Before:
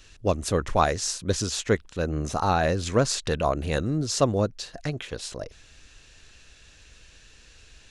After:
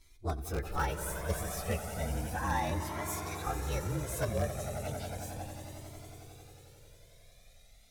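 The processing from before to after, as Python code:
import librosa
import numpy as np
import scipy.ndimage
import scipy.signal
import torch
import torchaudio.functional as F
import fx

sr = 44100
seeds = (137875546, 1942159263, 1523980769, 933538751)

p1 = fx.partial_stretch(x, sr, pct=115)
p2 = fx.highpass(p1, sr, hz=1400.0, slope=6, at=(2.85, 3.47))
p3 = (np.mod(10.0 ** (15.5 / 20.0) * p2 + 1.0, 2.0) - 1.0) / 10.0 ** (15.5 / 20.0)
p4 = p2 + (p3 * 10.0 ** (-9.5 / 20.0))
p5 = fx.echo_swell(p4, sr, ms=90, loudest=5, wet_db=-12.0)
p6 = fx.comb_cascade(p5, sr, direction='rising', hz=0.34)
y = p6 * 10.0 ** (-6.0 / 20.0)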